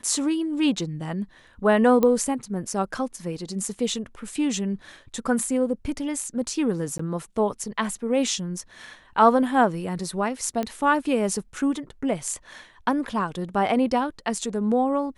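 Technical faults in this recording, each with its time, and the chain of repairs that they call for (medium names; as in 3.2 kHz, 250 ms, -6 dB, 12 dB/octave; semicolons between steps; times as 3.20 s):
2.03 s: pop -10 dBFS
6.98–6.99 s: dropout 14 ms
10.63 s: pop -15 dBFS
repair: de-click; interpolate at 6.98 s, 14 ms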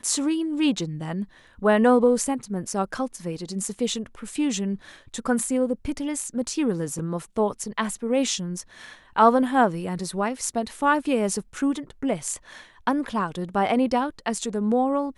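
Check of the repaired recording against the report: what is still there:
nothing left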